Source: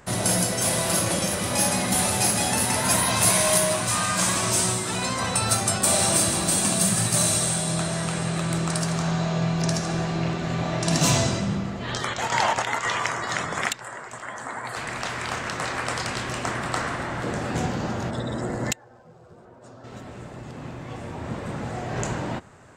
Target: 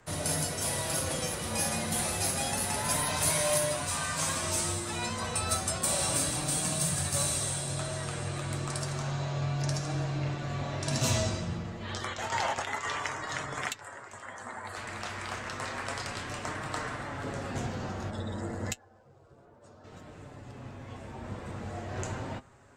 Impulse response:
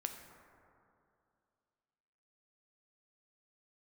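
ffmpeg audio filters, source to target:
-af "flanger=delay=6.2:depth=1.9:regen=50:speed=0.3:shape=triangular,afreqshift=-25,volume=-4dB"

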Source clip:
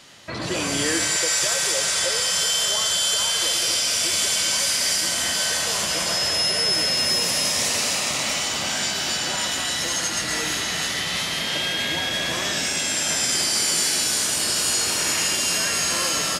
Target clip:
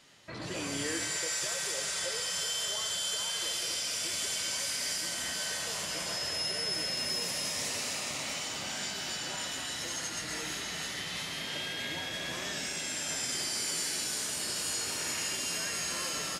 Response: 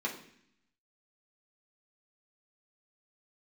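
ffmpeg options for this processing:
-filter_complex "[0:a]flanger=delay=4.5:depth=4:regen=-75:speed=0.56:shape=triangular,asplit=2[a][b];[1:a]atrim=start_sample=2205[c];[b][c]afir=irnorm=-1:irlink=0,volume=-19dB[d];[a][d]amix=inputs=2:normalize=0,volume=-7dB"

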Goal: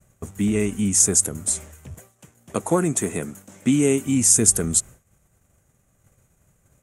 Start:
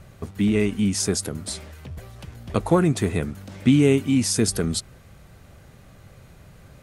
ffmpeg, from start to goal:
-filter_complex "[0:a]asettb=1/sr,asplit=3[a][b][c];[a]atrim=end=1.944[d];[b]atrim=start=1.94:end=4.07,asetpts=PTS-STARTPTS,afade=t=in:d=0.004:c=qsin,afade=t=out:st=2.126:d=0.004:c=qsin,highpass=170[e];[c]atrim=start=4.066[f];[d][e]acrossfade=d=0.004:c1=hsin:c2=qsin[g];[g][f]acrossfade=d=0.004:c1=qsin:c2=hsin,agate=range=-33dB:threshold=-37dB:ratio=3:detection=peak,highshelf=f=5.7k:t=q:w=3:g=8,volume=-1dB"

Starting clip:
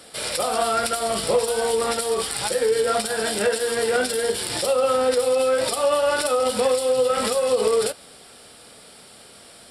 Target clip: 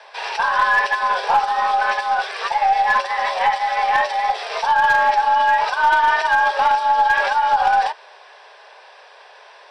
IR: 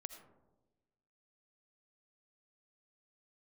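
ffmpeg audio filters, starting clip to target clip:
-af "afreqshift=340,highpass=410,equalizer=f=420:t=q:w=4:g=7,equalizer=f=650:t=q:w=4:g=8,equalizer=f=1k:t=q:w=4:g=5,equalizer=f=1.6k:t=q:w=4:g=8,equalizer=f=2.5k:t=q:w=4:g=5,equalizer=f=4.3k:t=q:w=4:g=-4,lowpass=f=4.8k:w=0.5412,lowpass=f=4.8k:w=1.3066,aeval=exprs='0.355*(cos(1*acos(clip(val(0)/0.355,-1,1)))-cos(1*PI/2))+0.0178*(cos(2*acos(clip(val(0)/0.355,-1,1)))-cos(2*PI/2))':c=same"

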